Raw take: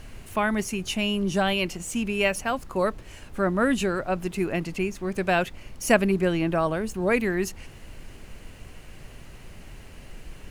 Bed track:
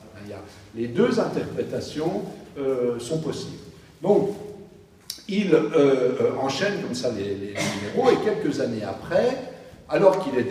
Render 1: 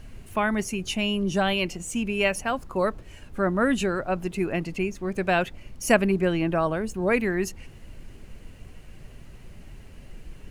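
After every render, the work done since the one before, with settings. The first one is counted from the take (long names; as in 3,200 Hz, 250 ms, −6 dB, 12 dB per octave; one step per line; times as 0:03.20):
broadband denoise 6 dB, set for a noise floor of −45 dBFS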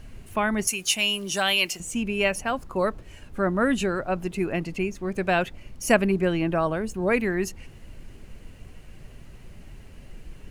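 0:00.67–0:01.80: spectral tilt +4 dB per octave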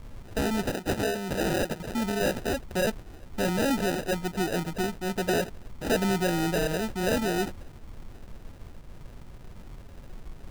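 decimation without filtering 40×
soft clipping −19.5 dBFS, distortion −11 dB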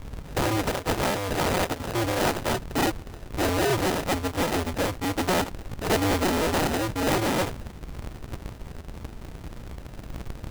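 sub-harmonics by changed cycles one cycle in 2, inverted
in parallel at −4 dB: hard clipping −31 dBFS, distortion −7 dB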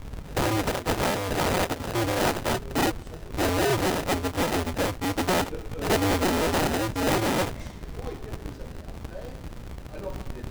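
mix in bed track −20.5 dB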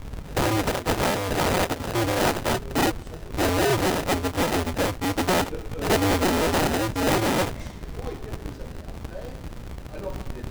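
level +2 dB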